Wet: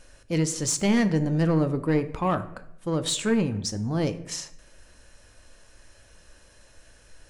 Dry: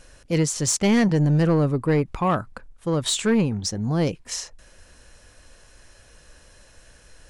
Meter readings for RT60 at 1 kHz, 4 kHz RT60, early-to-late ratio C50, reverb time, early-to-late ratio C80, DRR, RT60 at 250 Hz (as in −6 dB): 0.70 s, 0.50 s, 14.5 dB, 0.75 s, 17.5 dB, 10.0 dB, 0.85 s